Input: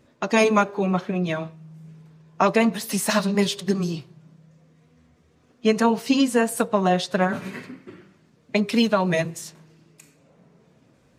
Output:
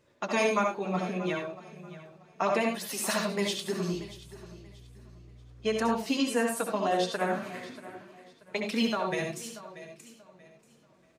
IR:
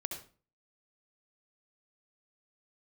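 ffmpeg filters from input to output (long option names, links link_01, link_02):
-filter_complex "[0:a]lowshelf=frequency=320:gain=-7,asplit=2[link_01][link_02];[link_02]alimiter=limit=-13.5dB:level=0:latency=1:release=477,volume=2dB[link_03];[link_01][link_03]amix=inputs=2:normalize=0,aecho=1:1:634|1268|1902:0.15|0.0434|0.0126,flanger=delay=1.9:depth=6.6:regen=-48:speed=0.71:shape=sinusoidal,asettb=1/sr,asplit=3[link_04][link_05][link_06];[link_04]atrim=end=3.934[link_07];[link_05]atrim=start=3.93:end=5.96,asetpts=PTS-STARTPTS,afade=type=in:duration=0.004:curve=qsin,afade=type=out:start_time=2.026:duration=0.004:curve=qsin,aeval=exprs='val(0)+0.00891*(sin(2*PI*60*n/s)+sin(2*PI*2*60*n/s)/2+sin(2*PI*3*60*n/s)/3+sin(2*PI*4*60*n/s)/4+sin(2*PI*5*60*n/s)/5)':channel_layout=same[link_08];[link_06]atrim=start=5.956[link_09];[link_07][link_08]acrossfade=duration=0.004:curve1=hsin:curve2=qsin[link_10];[link_10][link_09]acrossfade=duration=0.004:curve1=qsin:curve2=hsin[link_11];[1:a]atrim=start_sample=2205,afade=type=out:start_time=0.16:duration=0.01,atrim=end_sample=7497[link_12];[link_11][link_12]afir=irnorm=-1:irlink=0,volume=-7dB"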